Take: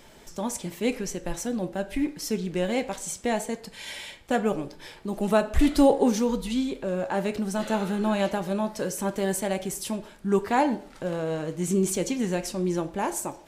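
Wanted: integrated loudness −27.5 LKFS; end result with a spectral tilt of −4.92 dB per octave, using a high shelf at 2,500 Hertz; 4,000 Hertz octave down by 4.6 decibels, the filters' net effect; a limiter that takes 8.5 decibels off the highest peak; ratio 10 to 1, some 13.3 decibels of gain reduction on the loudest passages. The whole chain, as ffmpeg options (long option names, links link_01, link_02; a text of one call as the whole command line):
ffmpeg -i in.wav -af "highshelf=frequency=2500:gain=-3,equalizer=frequency=4000:width_type=o:gain=-3.5,acompressor=threshold=-27dB:ratio=10,volume=8.5dB,alimiter=limit=-17.5dB:level=0:latency=1" out.wav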